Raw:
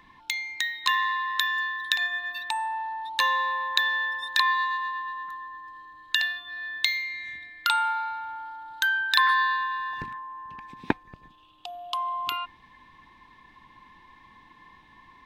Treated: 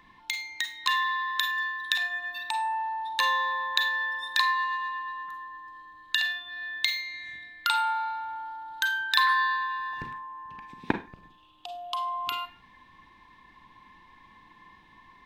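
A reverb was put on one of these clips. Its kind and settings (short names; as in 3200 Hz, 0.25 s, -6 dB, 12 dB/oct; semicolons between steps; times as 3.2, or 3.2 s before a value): Schroeder reverb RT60 0.3 s, combs from 33 ms, DRR 7.5 dB; gain -2 dB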